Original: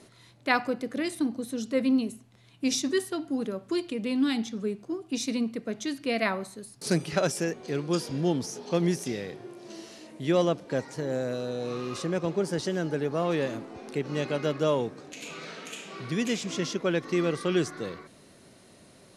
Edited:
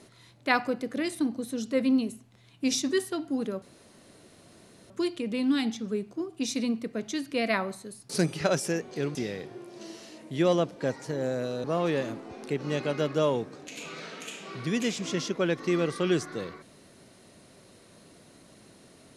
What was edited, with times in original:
3.62 insert room tone 1.28 s
7.87–9.04 cut
11.53–13.09 cut

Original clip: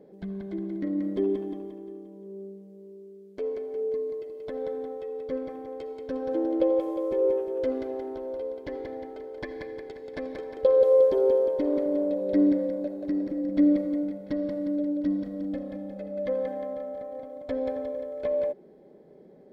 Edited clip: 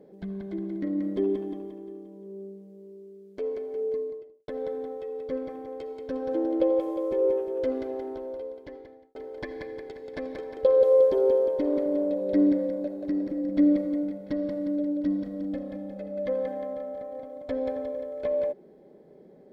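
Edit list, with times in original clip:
3.92–4.48 studio fade out
8.12–9.15 fade out

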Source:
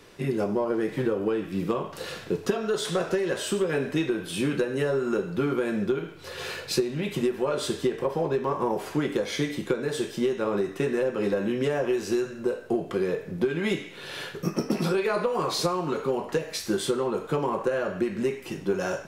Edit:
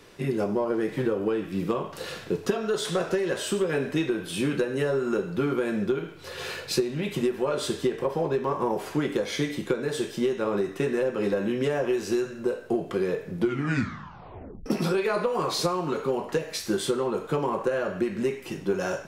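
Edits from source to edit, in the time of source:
13.37 tape stop 1.29 s

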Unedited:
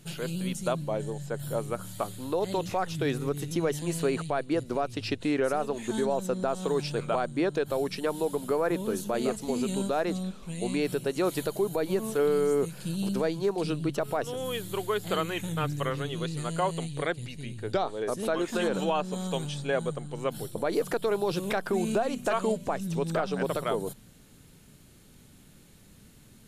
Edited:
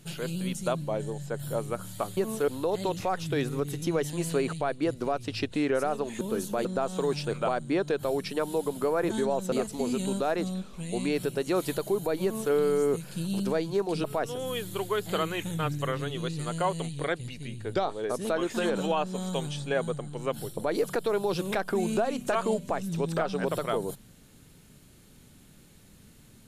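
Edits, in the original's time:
5.9–6.32 swap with 8.77–9.21
11.92–12.23 copy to 2.17
13.73–14.02 cut

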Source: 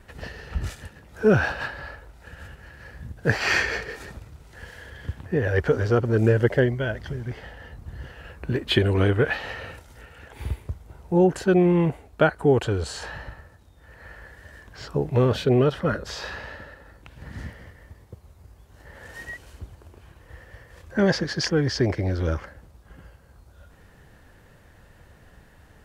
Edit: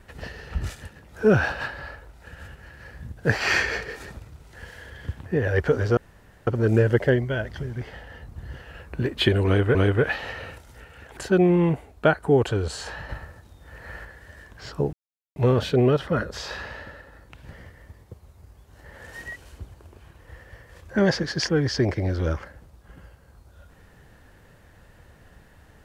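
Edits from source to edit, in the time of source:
5.97 insert room tone 0.50 s
8.96–9.25 loop, 2 plays
10.38–11.33 cut
13.25–14.21 gain +5 dB
15.09 insert silence 0.43 s
17.26–17.54 cut

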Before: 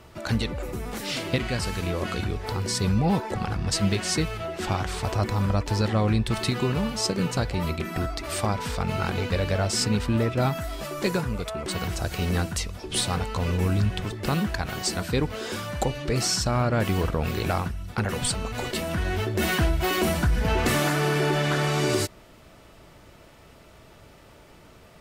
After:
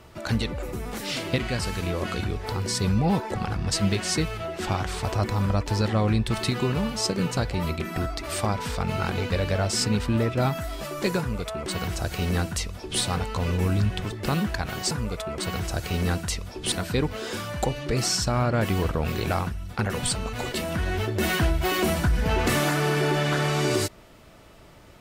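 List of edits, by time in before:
11.19–13 copy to 14.91

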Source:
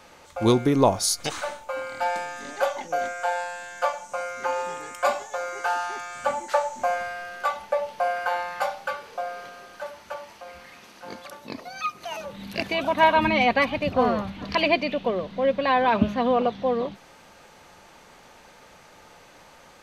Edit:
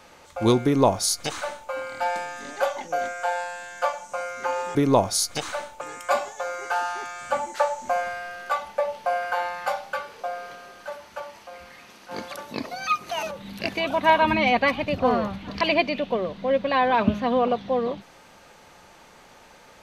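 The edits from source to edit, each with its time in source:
0.64–1.7 copy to 4.75
11.05–12.25 gain +5 dB

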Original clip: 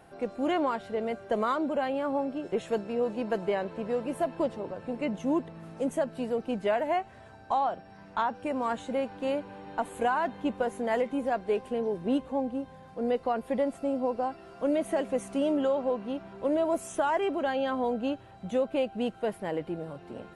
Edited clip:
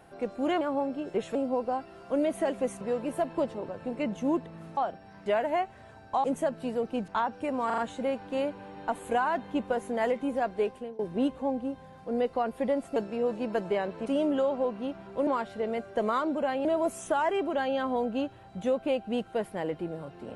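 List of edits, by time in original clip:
0.61–1.99 move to 16.53
2.73–3.83 swap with 13.86–15.32
5.79–6.63 swap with 7.61–8.1
8.68 stutter 0.04 s, 4 plays
11.52–11.89 fade out, to -22.5 dB

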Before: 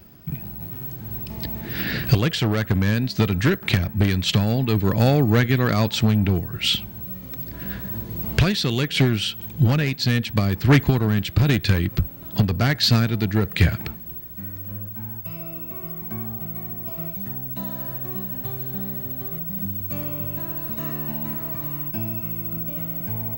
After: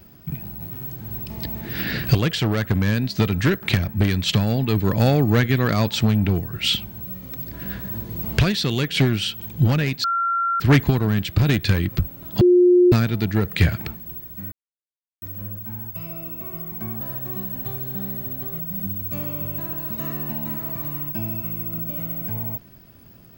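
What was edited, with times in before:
10.04–10.6 bleep 1370 Hz -18.5 dBFS
12.41–12.92 bleep 357 Hz -10 dBFS
14.52 insert silence 0.70 s
16.31–17.8 cut

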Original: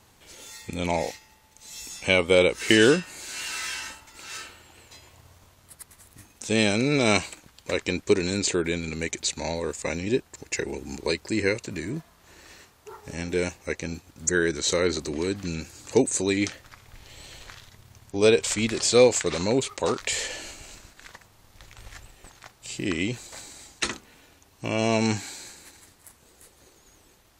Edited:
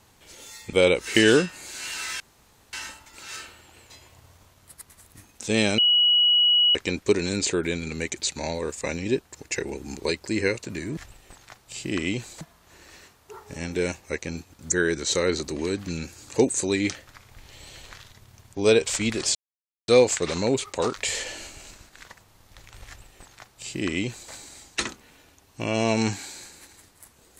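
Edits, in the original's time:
0.73–2.27 cut
3.74 insert room tone 0.53 s
6.79–7.76 bleep 2920 Hz -15.5 dBFS
18.92 insert silence 0.53 s
21.91–23.35 copy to 11.98

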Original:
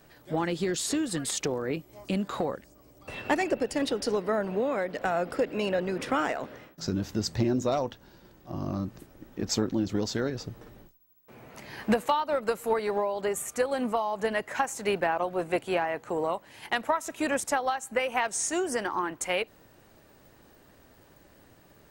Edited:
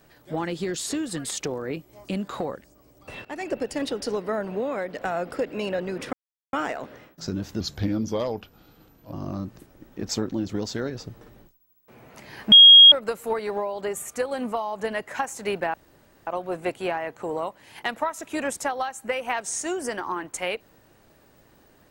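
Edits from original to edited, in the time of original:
3.25–3.56 fade in, from -22 dB
6.13 insert silence 0.40 s
7.2–8.53 speed 87%
11.92–12.32 bleep 3270 Hz -6 dBFS
15.14 insert room tone 0.53 s

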